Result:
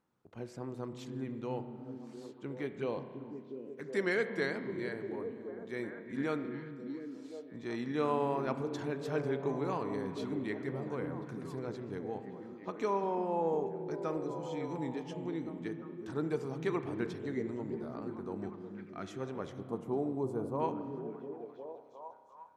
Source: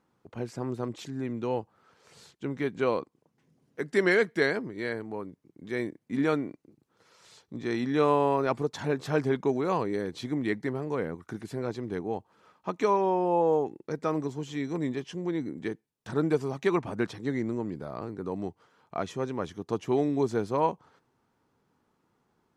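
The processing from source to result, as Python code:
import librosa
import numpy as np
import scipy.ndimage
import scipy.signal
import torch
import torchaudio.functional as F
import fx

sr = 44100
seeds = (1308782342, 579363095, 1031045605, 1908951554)

p1 = fx.env_flanger(x, sr, rest_ms=2.2, full_db=-23.5, at=(2.66, 3.82), fade=0.02)
p2 = fx.notch_comb(p1, sr, f0_hz=940.0, at=(14.17, 14.69))
p3 = fx.band_shelf(p2, sr, hz=3200.0, db=-14.5, octaves=2.4, at=(19.6, 20.6))
p4 = p3 + fx.echo_stepped(p3, sr, ms=354, hz=180.0, octaves=0.7, feedback_pct=70, wet_db=-2.5, dry=0)
p5 = fx.rev_spring(p4, sr, rt60_s=2.0, pass_ms=(30,), chirp_ms=45, drr_db=9.5)
p6 = fx.spec_box(p5, sr, start_s=18.84, length_s=0.37, low_hz=390.0, high_hz=1200.0, gain_db=-7)
y = p6 * 10.0 ** (-8.5 / 20.0)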